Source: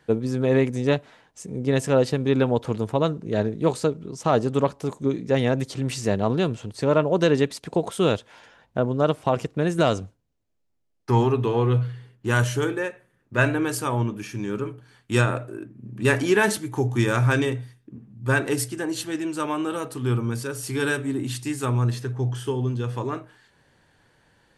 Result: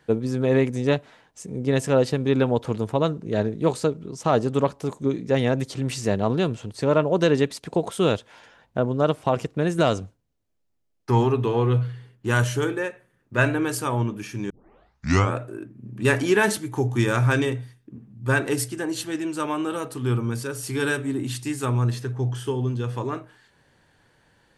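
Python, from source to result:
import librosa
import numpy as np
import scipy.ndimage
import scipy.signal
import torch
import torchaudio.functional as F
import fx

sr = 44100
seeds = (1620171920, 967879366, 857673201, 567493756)

y = fx.edit(x, sr, fx.tape_start(start_s=14.5, length_s=0.86), tone=tone)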